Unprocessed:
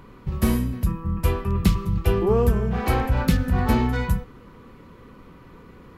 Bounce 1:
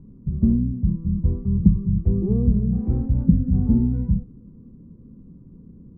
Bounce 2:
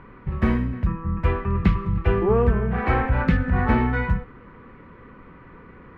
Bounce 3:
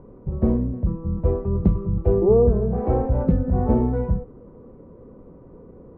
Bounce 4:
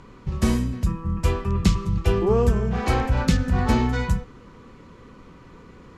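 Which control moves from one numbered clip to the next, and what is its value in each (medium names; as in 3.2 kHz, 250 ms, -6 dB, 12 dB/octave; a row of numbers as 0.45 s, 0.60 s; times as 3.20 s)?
resonant low-pass, frequency: 210 Hz, 1.9 kHz, 560 Hz, 7 kHz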